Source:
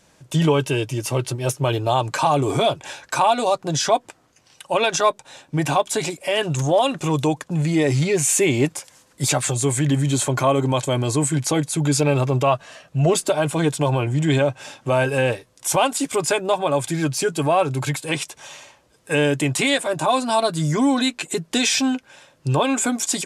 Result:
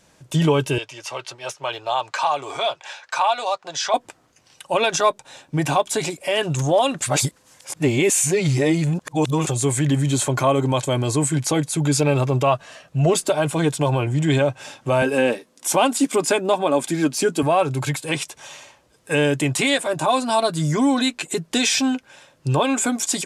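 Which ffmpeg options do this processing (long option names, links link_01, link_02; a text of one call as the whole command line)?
ffmpeg -i in.wav -filter_complex "[0:a]asettb=1/sr,asplit=3[link_01][link_02][link_03];[link_01]atrim=end=0.784[link_04];[link_02]atrim=start=0.78:end=3.94,asetpts=PTS-STARTPTS,afade=type=in:duration=0.004:curve=qsin,afade=type=out:start_time=3.156:duration=0.004:curve=qsin,acrossover=split=590 6700:gain=0.0708 1 0.126[link_05][link_06][link_07];[link_05][link_06][link_07]amix=inputs=3:normalize=0[link_08];[link_03]atrim=start=3.936[link_09];[link_04][link_08]acrossfade=duration=0.004:curve1=hsin:curve2=qsin[link_10];[link_10][link_09]acrossfade=duration=0.004:curve1=qsin:curve2=hsin,asettb=1/sr,asplit=3[link_11][link_12][link_13];[link_11]atrim=end=15.024[link_14];[link_12]atrim=start=15.02:end=17.43,asetpts=PTS-STARTPTS,afade=type=in:duration=0.004:curve=qsin,afade=type=out:start_time=2.406:duration=0.004:curve=qsin,lowshelf=frequency=150:width_type=q:width=3:gain=-13[link_15];[link_13]atrim=start=17.426[link_16];[link_14][link_15]acrossfade=duration=0.004:curve1=hsin:curve2=qsin[link_17];[link_17][link_16]acrossfade=duration=0.004:curve1=qsin:curve2=hsin,asplit=3[link_18][link_19][link_20];[link_18]atrim=end=7.022[link_21];[link_19]atrim=start=7.018:end=9.472,asetpts=PTS-STARTPTS,areverse[link_22];[link_20]atrim=start=9.468[link_23];[link_21][link_22]acrossfade=duration=0.004:curve1=hsin:curve2=hsin[link_24];[link_24][link_23]acrossfade=duration=0.004:curve1=hsin:curve2=hsin" out.wav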